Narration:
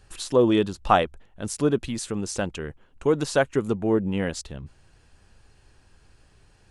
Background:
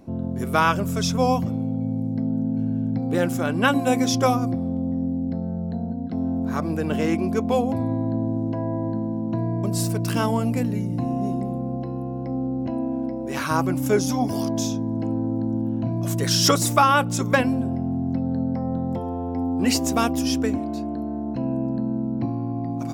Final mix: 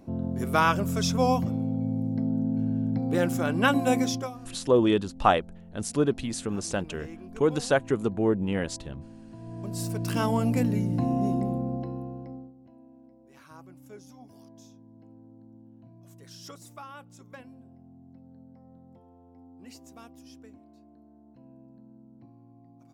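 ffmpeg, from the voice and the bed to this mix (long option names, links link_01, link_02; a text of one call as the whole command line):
ffmpeg -i stem1.wav -i stem2.wav -filter_complex "[0:a]adelay=4350,volume=-2dB[link_01];[1:a]volume=16.5dB,afade=type=out:start_time=3.97:duration=0.33:silence=0.133352,afade=type=in:start_time=9.38:duration=1.24:silence=0.105925,afade=type=out:start_time=11.48:duration=1.05:silence=0.0501187[link_02];[link_01][link_02]amix=inputs=2:normalize=0" out.wav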